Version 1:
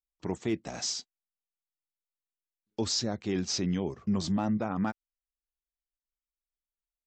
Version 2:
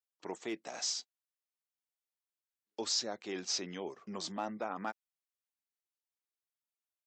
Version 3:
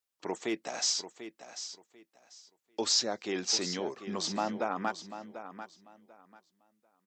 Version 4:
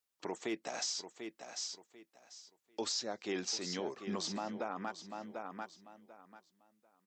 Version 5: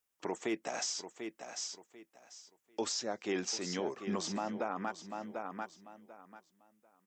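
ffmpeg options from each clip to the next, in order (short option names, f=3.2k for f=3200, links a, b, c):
-af "highpass=450,volume=-2.5dB"
-af "aecho=1:1:742|1484|2226:0.266|0.0559|0.0117,volume=6dB"
-af "alimiter=level_in=3dB:limit=-24dB:level=0:latency=1:release=379,volume=-3dB"
-af "equalizer=f=4.2k:w=2.5:g=-7.5,volume=3dB"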